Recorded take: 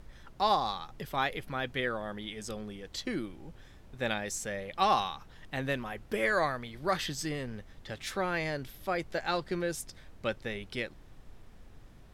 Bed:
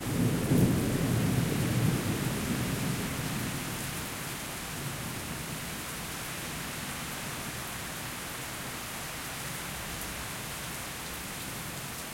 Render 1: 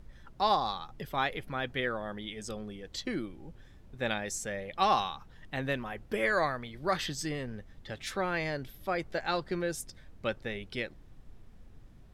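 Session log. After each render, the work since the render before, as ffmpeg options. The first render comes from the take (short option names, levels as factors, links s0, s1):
-af "afftdn=nr=6:nf=-54"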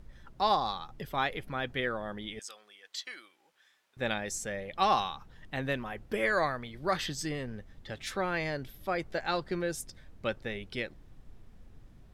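-filter_complex "[0:a]asettb=1/sr,asplit=3[s0][s1][s2];[s0]atrim=end=2.394[s3];[s1]atrim=start=2.39:end=3.97,asetpts=PTS-STARTPTS,afade=t=in:d=0.004:c=qsin,afade=t=out:st=1.576:d=0.004:c=qsin,highpass=1300[s4];[s2]atrim=start=3.966[s5];[s3][s4]acrossfade=d=0.004:c1=hsin:c2=qsin[s6];[s6][s5]acrossfade=d=0.004:c1=qsin:c2=hsin"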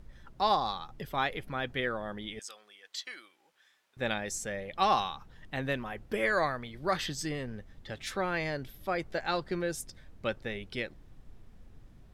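-af anull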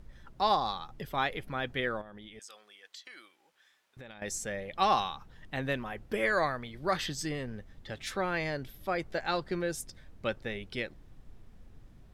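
-filter_complex "[0:a]asettb=1/sr,asplit=3[s0][s1][s2];[s0]atrim=end=2.014[s3];[s1]atrim=start=2.01:end=4.22,asetpts=PTS-STARTPTS,afade=t=in:d=0.004:c=qsin,afade=t=out:st=2.206:d=0.004:c=qsin,acompressor=threshold=0.00631:ratio=10:attack=3.2:release=140:knee=1:detection=peak[s4];[s2]atrim=start=4.216[s5];[s3][s4]acrossfade=d=0.004:c1=hsin:c2=qsin[s6];[s6][s5]acrossfade=d=0.004:c1=qsin:c2=hsin"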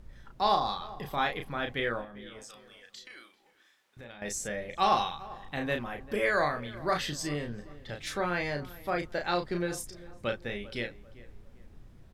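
-filter_complex "[0:a]asplit=2[s0][s1];[s1]adelay=34,volume=0.562[s2];[s0][s2]amix=inputs=2:normalize=0,asplit=2[s3][s4];[s4]adelay=394,lowpass=f=1700:p=1,volume=0.126,asplit=2[s5][s6];[s6]adelay=394,lowpass=f=1700:p=1,volume=0.39,asplit=2[s7][s8];[s8]adelay=394,lowpass=f=1700:p=1,volume=0.39[s9];[s3][s5][s7][s9]amix=inputs=4:normalize=0"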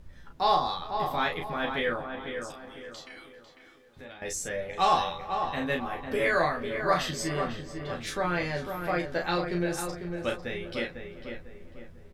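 -filter_complex "[0:a]asplit=2[s0][s1];[s1]adelay=12,volume=0.668[s2];[s0][s2]amix=inputs=2:normalize=0,asplit=2[s3][s4];[s4]adelay=499,lowpass=f=2000:p=1,volume=0.501,asplit=2[s5][s6];[s6]adelay=499,lowpass=f=2000:p=1,volume=0.4,asplit=2[s7][s8];[s8]adelay=499,lowpass=f=2000:p=1,volume=0.4,asplit=2[s9][s10];[s10]adelay=499,lowpass=f=2000:p=1,volume=0.4,asplit=2[s11][s12];[s12]adelay=499,lowpass=f=2000:p=1,volume=0.4[s13];[s3][s5][s7][s9][s11][s13]amix=inputs=6:normalize=0"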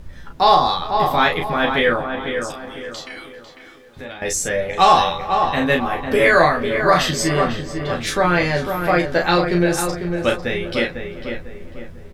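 -af "volume=3.98,alimiter=limit=0.794:level=0:latency=1"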